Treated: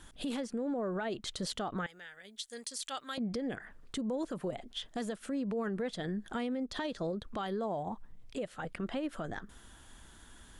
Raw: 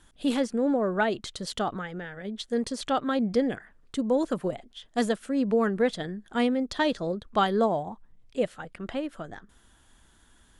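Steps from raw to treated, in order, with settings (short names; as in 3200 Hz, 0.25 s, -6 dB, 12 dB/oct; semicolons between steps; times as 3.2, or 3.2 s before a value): 1.86–3.18 pre-emphasis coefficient 0.97; compressor 12:1, threshold -34 dBFS, peak gain reduction 16.5 dB; limiter -32.5 dBFS, peak gain reduction 10.5 dB; gain +4.5 dB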